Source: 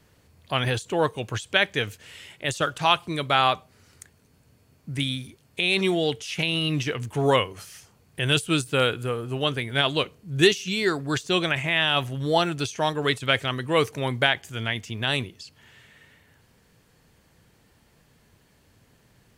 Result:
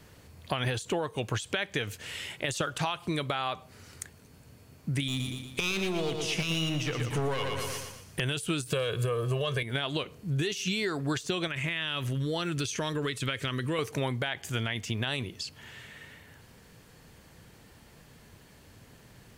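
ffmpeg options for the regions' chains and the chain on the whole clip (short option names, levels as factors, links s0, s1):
-filter_complex "[0:a]asettb=1/sr,asplit=3[s0][s1][s2];[s0]atrim=end=5.084[s3];[s1]atrim=start=5.08:end=8.2,asetpts=PTS-STARTPTS,afade=t=in:d=0.004:c=qsin,afade=t=out:st=3.116:d=0.004:c=qsin,aeval=exprs='clip(val(0),-1,0.0501)':c=same,aecho=1:1:117|234|351|468|585:0.398|0.187|0.0879|0.0413|0.0194,atrim=end_sample=137592[s4];[s2]atrim=start=8.196[s5];[s3][s4]acrossfade=d=0.004:c1=hsin:c2=qsin[s6];[s6][s5]acrossfade=d=0.004:c1=qsin:c2=hsin,asettb=1/sr,asplit=3[s7][s8][s9];[s7]atrim=end=8.704[s10];[s8]atrim=start=8.7:end=9.63,asetpts=PTS-STARTPTS,afade=t=in:d=0.004:c=qsin,afade=t=out:st=0.926:d=0.004:c=qsin,aecho=1:1:1.8:0.82,atrim=end_sample=41013,acontrast=35[s11];[s9]atrim=start=9.626[s12];[s10][s11]acrossfade=d=0.004:c1=hsin:c2=qsin[s13];[s13][s12]acrossfade=d=0.004:c1=qsin:c2=hsin,asettb=1/sr,asplit=3[s14][s15][s16];[s14]atrim=end=11.474[s17];[s15]atrim=start=11.47:end=13.79,asetpts=PTS-STARTPTS,afade=t=in:d=0.004:c=qsin,afade=t=out:st=2.316:d=0.004:c=qsin,equalizer=f=760:w=2.9:g=-13,acompressor=threshold=0.0251:ratio=3:attack=3.2:release=140:knee=1:detection=peak[s18];[s16]atrim=start=13.786[s19];[s17][s18]acrossfade=d=0.004:c1=hsin:c2=qsin[s20];[s20][s19]acrossfade=d=0.004:c1=qsin:c2=hsin,alimiter=limit=0.158:level=0:latency=1:release=106,acompressor=threshold=0.0224:ratio=6,volume=1.88"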